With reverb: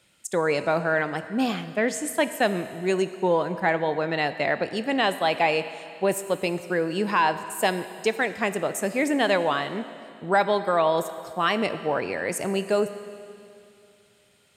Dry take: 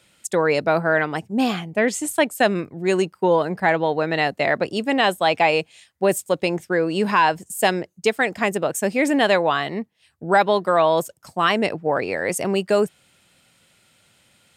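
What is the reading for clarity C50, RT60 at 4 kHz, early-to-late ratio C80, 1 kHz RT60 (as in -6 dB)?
12.0 dB, 2.6 s, 12.5 dB, 2.6 s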